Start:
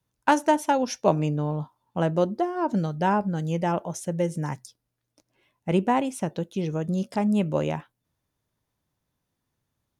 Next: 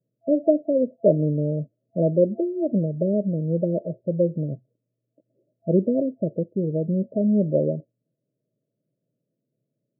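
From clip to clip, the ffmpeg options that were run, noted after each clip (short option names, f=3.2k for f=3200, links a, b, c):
-af "afftfilt=real='re*between(b*sr/4096,110,670)':imag='im*between(b*sr/4096,110,670)':win_size=4096:overlap=0.75,equalizer=f=530:w=1.5:g=3,volume=2.5dB"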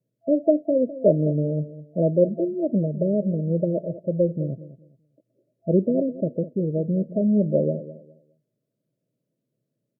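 -af "aecho=1:1:206|412|618:0.178|0.0427|0.0102" -ar 48000 -c:a libopus -b:a 128k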